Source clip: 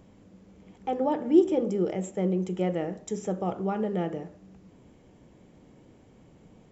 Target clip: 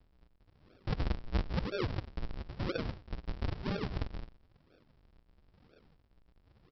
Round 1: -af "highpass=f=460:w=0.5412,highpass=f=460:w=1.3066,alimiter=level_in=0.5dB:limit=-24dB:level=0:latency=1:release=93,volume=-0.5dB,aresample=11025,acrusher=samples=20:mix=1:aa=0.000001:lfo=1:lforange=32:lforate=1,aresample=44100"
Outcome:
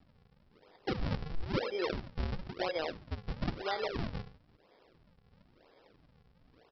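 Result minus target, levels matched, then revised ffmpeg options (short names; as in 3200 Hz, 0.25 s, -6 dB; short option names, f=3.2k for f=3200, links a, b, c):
decimation with a swept rate: distortion -38 dB
-af "highpass=f=460:w=0.5412,highpass=f=460:w=1.3066,alimiter=level_in=0.5dB:limit=-24dB:level=0:latency=1:release=93,volume=-0.5dB,aresample=11025,acrusher=samples=53:mix=1:aa=0.000001:lfo=1:lforange=84.8:lforate=1,aresample=44100"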